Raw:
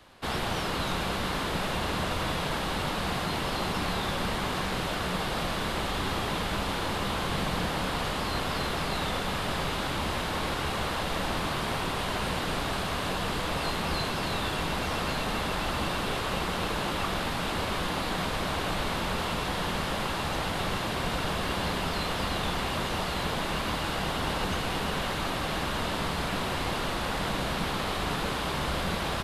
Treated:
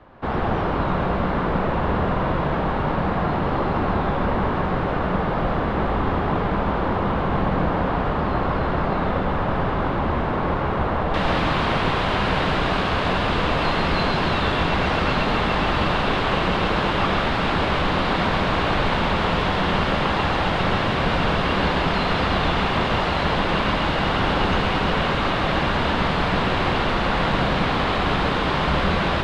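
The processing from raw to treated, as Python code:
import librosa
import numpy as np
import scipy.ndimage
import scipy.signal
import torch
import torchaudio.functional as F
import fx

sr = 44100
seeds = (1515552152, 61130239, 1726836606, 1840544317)

y = fx.lowpass(x, sr, hz=fx.steps((0.0, 1300.0), (11.14, 3200.0)), slope=12)
y = y + 10.0 ** (-4.5 / 20.0) * np.pad(y, (int(136 * sr / 1000.0), 0))[:len(y)]
y = F.gain(torch.from_numpy(y), 8.5).numpy()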